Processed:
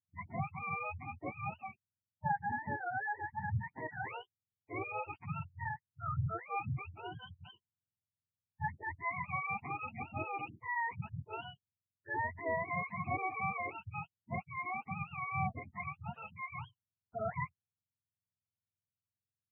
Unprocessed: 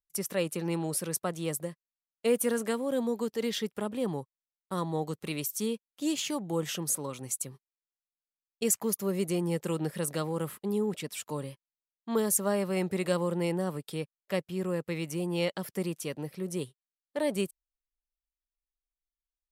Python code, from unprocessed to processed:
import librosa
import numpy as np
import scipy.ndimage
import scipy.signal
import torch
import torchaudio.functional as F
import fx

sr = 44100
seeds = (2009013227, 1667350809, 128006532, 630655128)

y = fx.octave_mirror(x, sr, pivot_hz=630.0)
y = fx.spec_gate(y, sr, threshold_db=-15, keep='strong')
y = y * librosa.db_to_amplitude(-5.5)